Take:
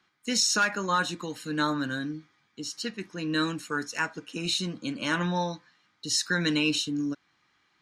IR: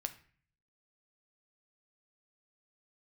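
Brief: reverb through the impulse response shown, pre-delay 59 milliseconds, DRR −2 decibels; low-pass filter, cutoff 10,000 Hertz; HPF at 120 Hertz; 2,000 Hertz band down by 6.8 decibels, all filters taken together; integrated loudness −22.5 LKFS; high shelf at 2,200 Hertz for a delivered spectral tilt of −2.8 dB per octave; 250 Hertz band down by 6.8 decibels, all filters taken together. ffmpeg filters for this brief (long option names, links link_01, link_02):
-filter_complex "[0:a]highpass=120,lowpass=10000,equalizer=frequency=250:width_type=o:gain=-9,equalizer=frequency=2000:width_type=o:gain=-8.5,highshelf=frequency=2200:gain=-3,asplit=2[link_01][link_02];[1:a]atrim=start_sample=2205,adelay=59[link_03];[link_02][link_03]afir=irnorm=-1:irlink=0,volume=3dB[link_04];[link_01][link_04]amix=inputs=2:normalize=0,volume=6.5dB"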